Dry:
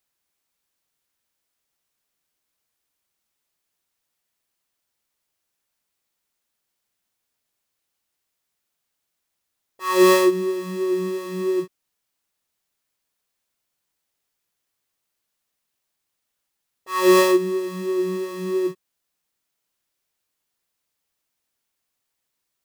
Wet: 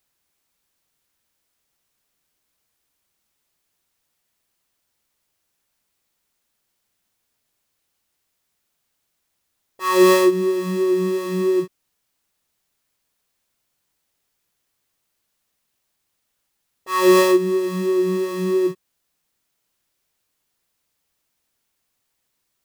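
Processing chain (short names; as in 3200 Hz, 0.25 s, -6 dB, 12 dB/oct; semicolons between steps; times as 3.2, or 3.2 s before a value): low shelf 250 Hz +4 dB; in parallel at +1 dB: compressor, threshold -23 dBFS, peak gain reduction 13.5 dB; on the sum: gain -2 dB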